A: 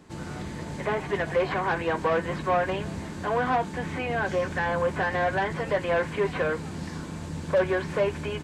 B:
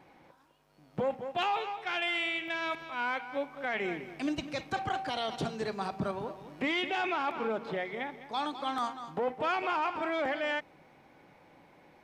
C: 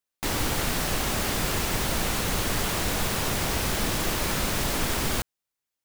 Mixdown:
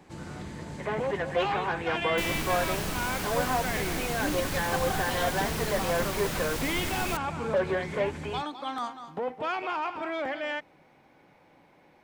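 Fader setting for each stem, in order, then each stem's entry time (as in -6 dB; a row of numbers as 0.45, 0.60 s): -4.0, -0.5, -7.0 dB; 0.00, 0.00, 1.95 s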